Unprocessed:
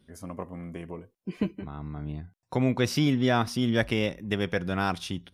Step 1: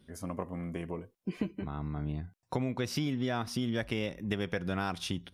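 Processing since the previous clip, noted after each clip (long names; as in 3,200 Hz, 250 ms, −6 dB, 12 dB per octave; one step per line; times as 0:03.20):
downward compressor 6 to 1, threshold −30 dBFS, peak gain reduction 11 dB
level +1 dB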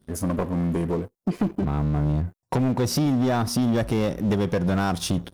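parametric band 2,500 Hz −12.5 dB 1.7 octaves
leveller curve on the samples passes 3
level +4.5 dB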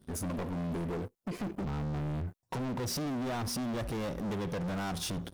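brickwall limiter −21 dBFS, peak gain reduction 5.5 dB
soft clipping −32.5 dBFS, distortion −9 dB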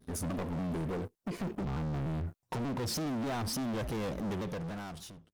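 fade-out on the ending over 1.08 s
pitch modulation by a square or saw wave saw down 3.4 Hz, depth 160 cents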